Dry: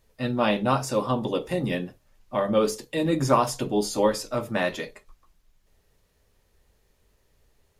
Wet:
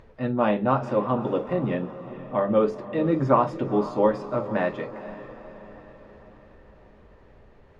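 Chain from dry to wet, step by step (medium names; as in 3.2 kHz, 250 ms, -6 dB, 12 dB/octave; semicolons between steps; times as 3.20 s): low-pass 1.6 kHz 12 dB/octave; bass shelf 65 Hz -6.5 dB; upward compressor, threshold -41 dBFS; echo that smears into a reverb 463 ms, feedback 55%, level -14 dB; trim +1.5 dB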